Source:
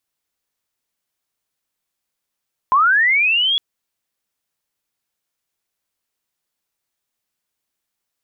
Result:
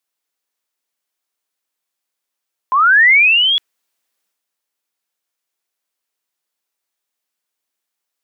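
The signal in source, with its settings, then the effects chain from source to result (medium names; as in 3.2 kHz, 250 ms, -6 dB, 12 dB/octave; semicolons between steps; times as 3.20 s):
sweep linear 1 kHz -> 3.4 kHz -10 dBFS -> -14.5 dBFS 0.86 s
Bessel high-pass 310 Hz, order 2; dynamic bell 2 kHz, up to +6 dB, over -31 dBFS, Q 1; transient shaper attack -3 dB, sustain +6 dB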